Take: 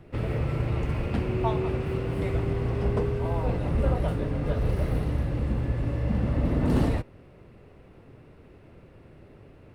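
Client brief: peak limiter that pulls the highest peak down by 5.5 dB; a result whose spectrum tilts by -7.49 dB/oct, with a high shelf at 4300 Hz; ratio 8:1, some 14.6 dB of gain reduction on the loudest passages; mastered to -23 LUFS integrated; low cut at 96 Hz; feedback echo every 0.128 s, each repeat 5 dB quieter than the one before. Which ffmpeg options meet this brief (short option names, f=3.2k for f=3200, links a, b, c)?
-af "highpass=96,highshelf=f=4.3k:g=-3.5,acompressor=threshold=-36dB:ratio=8,alimiter=level_in=9dB:limit=-24dB:level=0:latency=1,volume=-9dB,aecho=1:1:128|256|384|512|640|768|896:0.562|0.315|0.176|0.0988|0.0553|0.031|0.0173,volume=16.5dB"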